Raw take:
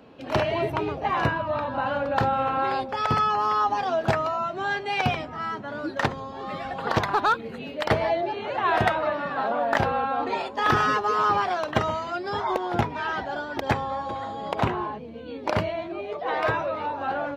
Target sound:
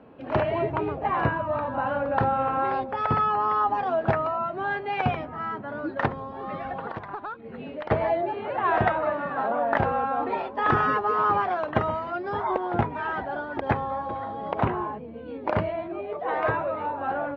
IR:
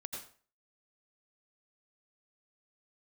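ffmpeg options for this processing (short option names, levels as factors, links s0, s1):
-filter_complex "[0:a]lowpass=1900,asplit=3[s0][s1][s2];[s0]afade=t=out:st=6.79:d=0.02[s3];[s1]acompressor=threshold=0.0282:ratio=16,afade=t=in:st=6.79:d=0.02,afade=t=out:st=7.9:d=0.02[s4];[s2]afade=t=in:st=7.9:d=0.02[s5];[s3][s4][s5]amix=inputs=3:normalize=0"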